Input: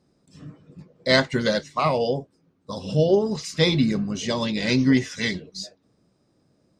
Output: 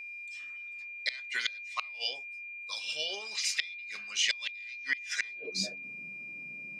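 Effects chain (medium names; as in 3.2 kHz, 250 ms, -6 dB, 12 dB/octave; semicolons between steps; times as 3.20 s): high-pass sweep 2.3 kHz -> 180 Hz, 5.09–5.68 s; inverted gate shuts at -17 dBFS, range -31 dB; whistle 2.4 kHz -42 dBFS; trim +1.5 dB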